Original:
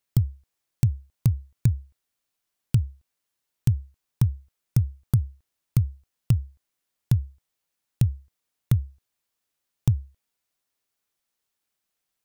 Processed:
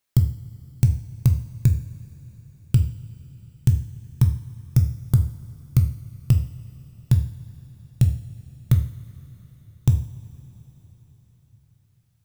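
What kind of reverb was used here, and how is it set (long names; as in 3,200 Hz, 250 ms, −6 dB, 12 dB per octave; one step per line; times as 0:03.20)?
coupled-rooms reverb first 0.5 s, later 4.6 s, from −18 dB, DRR 4.5 dB
level +2.5 dB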